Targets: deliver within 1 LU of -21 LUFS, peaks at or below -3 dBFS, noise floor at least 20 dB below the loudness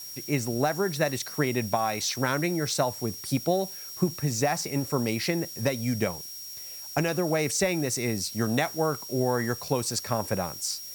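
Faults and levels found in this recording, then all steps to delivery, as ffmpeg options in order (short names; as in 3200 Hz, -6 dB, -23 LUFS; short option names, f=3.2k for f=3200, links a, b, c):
steady tone 5600 Hz; tone level -40 dBFS; noise floor -40 dBFS; noise floor target -48 dBFS; loudness -28.0 LUFS; peak -10.5 dBFS; loudness target -21.0 LUFS
-> -af "bandreject=f=5.6k:w=30"
-af "afftdn=nr=8:nf=-40"
-af "volume=7dB"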